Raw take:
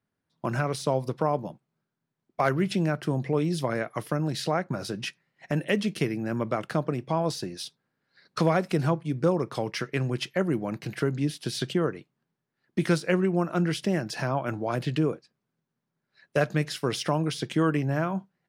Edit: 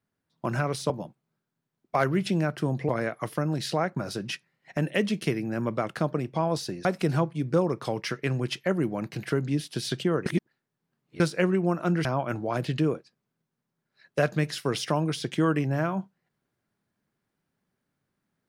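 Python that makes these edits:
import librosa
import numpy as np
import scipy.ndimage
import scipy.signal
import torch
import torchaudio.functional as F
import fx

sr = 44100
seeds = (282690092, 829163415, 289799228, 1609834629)

y = fx.edit(x, sr, fx.cut(start_s=0.9, length_s=0.45),
    fx.cut(start_s=3.34, length_s=0.29),
    fx.cut(start_s=7.59, length_s=0.96),
    fx.reverse_span(start_s=11.96, length_s=0.94),
    fx.cut(start_s=13.75, length_s=0.48), tone=tone)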